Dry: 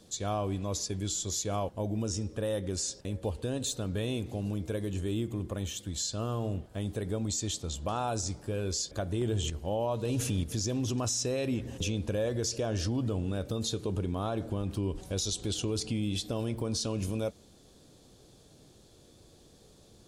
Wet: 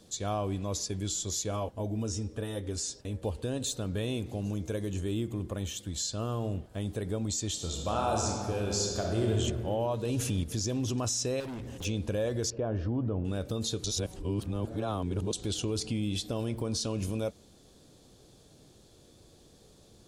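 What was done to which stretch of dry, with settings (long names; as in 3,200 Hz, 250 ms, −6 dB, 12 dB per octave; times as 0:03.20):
0:01.51–0:03.22: notch comb filter 180 Hz
0:04.43–0:05.02: parametric band 6,400 Hz +13 dB → +5.5 dB 0.21 octaves
0:07.52–0:09.31: thrown reverb, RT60 2.2 s, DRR −0.5 dB
0:11.40–0:11.85: hard clipping −37 dBFS
0:12.50–0:13.25: low-pass filter 1,400 Hz
0:13.84–0:15.33: reverse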